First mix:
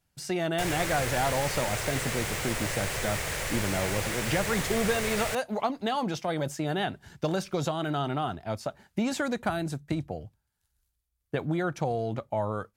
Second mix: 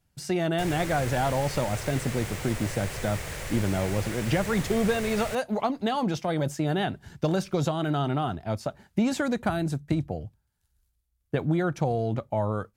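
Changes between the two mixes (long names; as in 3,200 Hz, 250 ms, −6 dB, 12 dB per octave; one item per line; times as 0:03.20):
background −5.5 dB
master: add low-shelf EQ 370 Hz +6 dB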